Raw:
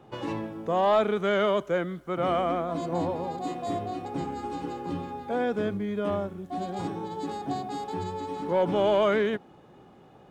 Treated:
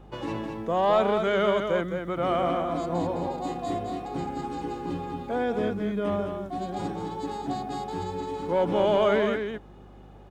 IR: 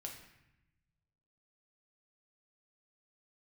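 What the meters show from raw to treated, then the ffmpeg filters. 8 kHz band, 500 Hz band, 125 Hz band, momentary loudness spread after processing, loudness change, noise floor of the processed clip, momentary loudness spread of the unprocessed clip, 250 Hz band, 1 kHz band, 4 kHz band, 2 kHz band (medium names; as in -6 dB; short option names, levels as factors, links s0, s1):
+1.0 dB, +1.0 dB, +1.0 dB, 11 LU, +1.0 dB, -48 dBFS, 11 LU, +1.0 dB, +1.0 dB, +1.0 dB, +1.0 dB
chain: -af "aecho=1:1:211:0.501,aeval=exprs='val(0)+0.00355*(sin(2*PI*50*n/s)+sin(2*PI*2*50*n/s)/2+sin(2*PI*3*50*n/s)/3+sin(2*PI*4*50*n/s)/4+sin(2*PI*5*50*n/s)/5)':c=same"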